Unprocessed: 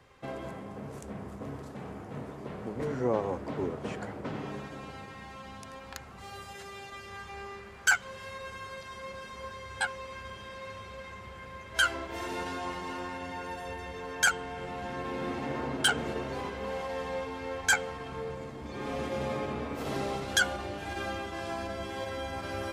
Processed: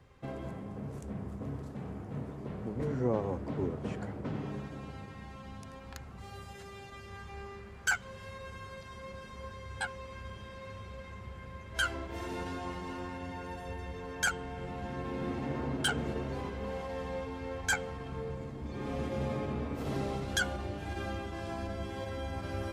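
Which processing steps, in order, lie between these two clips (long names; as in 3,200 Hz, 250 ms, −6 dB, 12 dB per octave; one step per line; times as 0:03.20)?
low-shelf EQ 280 Hz +11.5 dB
level −6 dB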